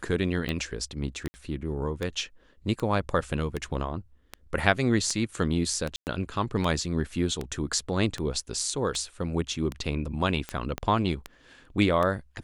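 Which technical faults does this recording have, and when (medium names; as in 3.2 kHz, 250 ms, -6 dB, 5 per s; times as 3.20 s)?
tick 78 rpm -17 dBFS
1.28–1.34 s: dropout 60 ms
5.96–6.07 s: dropout 109 ms
10.78 s: pop -16 dBFS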